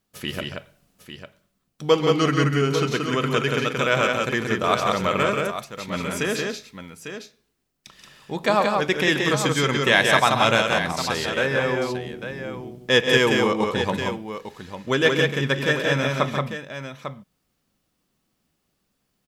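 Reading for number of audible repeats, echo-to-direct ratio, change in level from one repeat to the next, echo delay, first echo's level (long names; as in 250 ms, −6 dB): 3, −2.0 dB, repeats not evenly spaced, 135 ms, −10.0 dB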